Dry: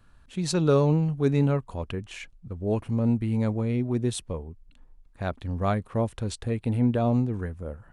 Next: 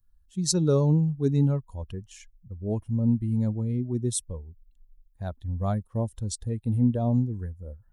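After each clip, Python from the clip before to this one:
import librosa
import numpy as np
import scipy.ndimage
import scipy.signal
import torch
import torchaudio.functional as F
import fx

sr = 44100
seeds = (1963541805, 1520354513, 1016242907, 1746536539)

y = fx.bin_expand(x, sr, power=1.5)
y = fx.curve_eq(y, sr, hz=(180.0, 1000.0, 2400.0, 5400.0), db=(0, -7, -16, 6))
y = y * 10.0 ** (2.5 / 20.0)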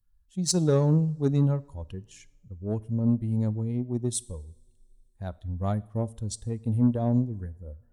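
y = fx.cheby_harmonics(x, sr, harmonics=(7,), levels_db=(-29,), full_scale_db=-11.0)
y = fx.rev_double_slope(y, sr, seeds[0], early_s=0.63, late_s=2.6, knee_db=-20, drr_db=18.5)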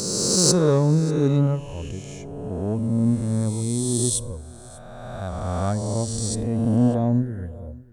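y = fx.spec_swells(x, sr, rise_s=2.26)
y = y + 10.0 ** (-22.5 / 20.0) * np.pad(y, (int(592 * sr / 1000.0), 0))[:len(y)]
y = y * 10.0 ** (2.5 / 20.0)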